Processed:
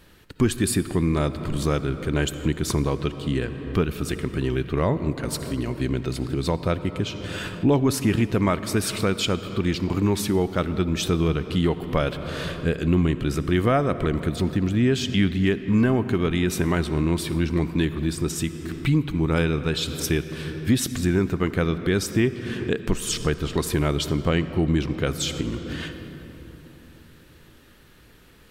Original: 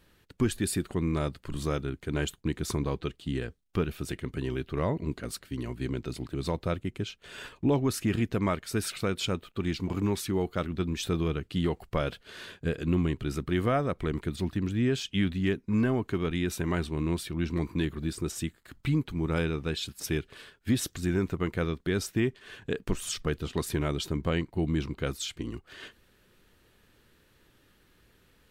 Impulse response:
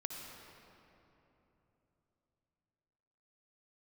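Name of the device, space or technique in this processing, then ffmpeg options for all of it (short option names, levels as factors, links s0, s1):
ducked reverb: -filter_complex "[0:a]asplit=3[s0][s1][s2];[1:a]atrim=start_sample=2205[s3];[s1][s3]afir=irnorm=-1:irlink=0[s4];[s2]apad=whole_len=1256875[s5];[s4][s5]sidechaincompress=threshold=0.0224:ratio=5:attack=5.1:release=416,volume=1.12[s6];[s0][s6]amix=inputs=2:normalize=0,volume=1.68"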